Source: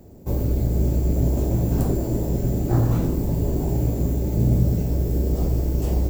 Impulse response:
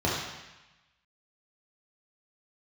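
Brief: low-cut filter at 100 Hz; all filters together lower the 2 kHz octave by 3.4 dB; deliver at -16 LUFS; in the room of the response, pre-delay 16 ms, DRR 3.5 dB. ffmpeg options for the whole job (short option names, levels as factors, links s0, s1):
-filter_complex "[0:a]highpass=100,equalizer=f=2000:t=o:g=-4.5,asplit=2[s0][s1];[1:a]atrim=start_sample=2205,adelay=16[s2];[s1][s2]afir=irnorm=-1:irlink=0,volume=0.15[s3];[s0][s3]amix=inputs=2:normalize=0,volume=1.88"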